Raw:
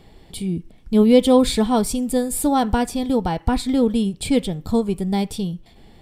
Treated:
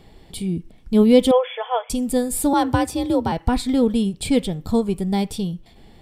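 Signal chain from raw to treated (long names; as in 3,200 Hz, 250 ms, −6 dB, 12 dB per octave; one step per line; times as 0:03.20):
0:01.31–0:01.90: linear-phase brick-wall band-pass 450–3,500 Hz
0:02.53–0:03.32: frequency shifter +51 Hz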